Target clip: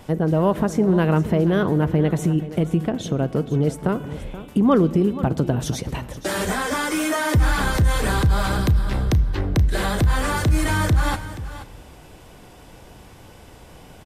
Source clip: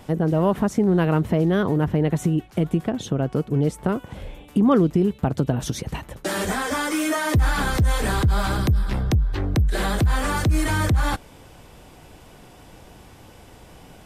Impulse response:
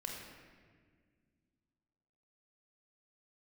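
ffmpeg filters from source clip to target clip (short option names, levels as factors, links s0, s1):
-filter_complex "[0:a]aecho=1:1:478:0.188,asplit=2[s0][s1];[1:a]atrim=start_sample=2205[s2];[s1][s2]afir=irnorm=-1:irlink=0,volume=0.237[s3];[s0][s3]amix=inputs=2:normalize=0"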